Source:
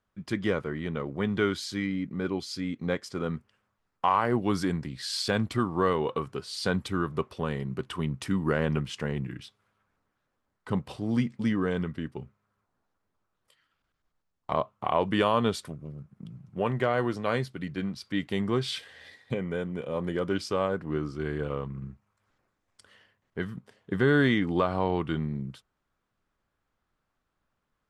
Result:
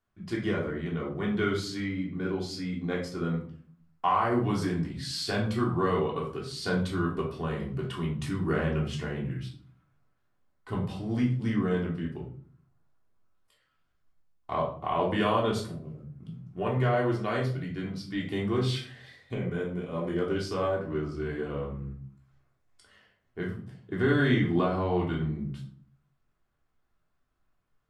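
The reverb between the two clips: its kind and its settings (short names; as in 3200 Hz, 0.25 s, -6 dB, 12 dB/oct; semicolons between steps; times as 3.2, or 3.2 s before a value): shoebox room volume 480 m³, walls furnished, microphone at 3.3 m; gain -6.5 dB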